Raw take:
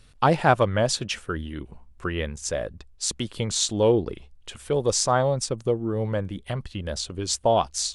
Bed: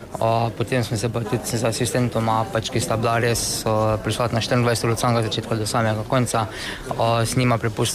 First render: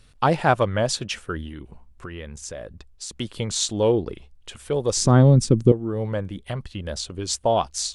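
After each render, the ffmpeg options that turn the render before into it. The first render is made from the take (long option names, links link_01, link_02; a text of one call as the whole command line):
ffmpeg -i in.wav -filter_complex "[0:a]asettb=1/sr,asplit=3[link_01][link_02][link_03];[link_01]atrim=end=1.484[link_04];[link_02]atrim=start=1.48:end=3.19,asetpts=PTS-STARTPTS,afade=type=in:duration=0.004:curve=qsin,afade=type=out:start_time=1.706:duration=0.004:curve=qsin,acompressor=threshold=-32dB:ratio=4:attack=3.2:release=140:knee=1:detection=peak[link_05];[link_03]atrim=start=3.186[link_06];[link_04][link_05]acrossfade=duration=0.004:curve1=hsin:curve2=qsin[link_07];[link_07][link_06]acrossfade=duration=0.004:curve1=qsin:curve2=hsin,asettb=1/sr,asplit=3[link_08][link_09][link_10];[link_08]atrim=end=4.974[link_11];[link_09]atrim=start=4.97:end=5.72,asetpts=PTS-STARTPTS,afade=type=in:duration=0.004:curve=qsin,afade=type=out:start_time=0.746:duration=0.004:curve=qsin,lowshelf=frequency=440:width_type=q:width=1.5:gain=13[link_12];[link_10]atrim=start=5.716[link_13];[link_11][link_12]acrossfade=duration=0.004:curve1=hsin:curve2=qsin[link_14];[link_14][link_13]acrossfade=duration=0.004:curve1=qsin:curve2=hsin" out.wav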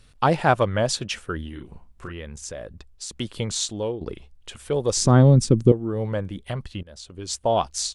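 ffmpeg -i in.wav -filter_complex "[0:a]asplit=3[link_01][link_02][link_03];[link_01]afade=type=out:start_time=1.52:duration=0.02[link_04];[link_02]asplit=2[link_05][link_06];[link_06]adelay=36,volume=-6dB[link_07];[link_05][link_07]amix=inputs=2:normalize=0,afade=type=in:start_time=1.52:duration=0.02,afade=type=out:start_time=2.11:duration=0.02[link_08];[link_03]afade=type=in:start_time=2.11:duration=0.02[link_09];[link_04][link_08][link_09]amix=inputs=3:normalize=0,asplit=3[link_10][link_11][link_12];[link_10]atrim=end=4.01,asetpts=PTS-STARTPTS,afade=type=out:start_time=3.46:duration=0.55:silence=0.188365[link_13];[link_11]atrim=start=4.01:end=6.83,asetpts=PTS-STARTPTS,afade=type=in:duration=0.004:curve=hsin:silence=0.188365,afade=type=out:start_time=2.816:duration=0.004:curve=hsin:silence=0.0891251[link_14];[link_12]atrim=start=6.83,asetpts=PTS-STARTPTS,afade=type=in:duration=0.77:silence=0.0891251[link_15];[link_13][link_14][link_15]concat=n=3:v=0:a=1" out.wav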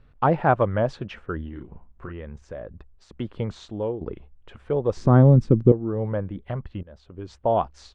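ffmpeg -i in.wav -af "lowpass=1500" out.wav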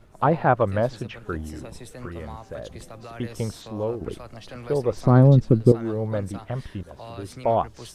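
ffmpeg -i in.wav -i bed.wav -filter_complex "[1:a]volume=-20.5dB[link_01];[0:a][link_01]amix=inputs=2:normalize=0" out.wav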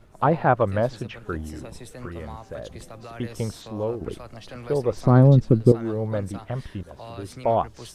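ffmpeg -i in.wav -af anull out.wav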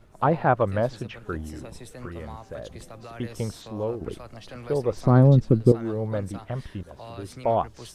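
ffmpeg -i in.wav -af "volume=-1.5dB" out.wav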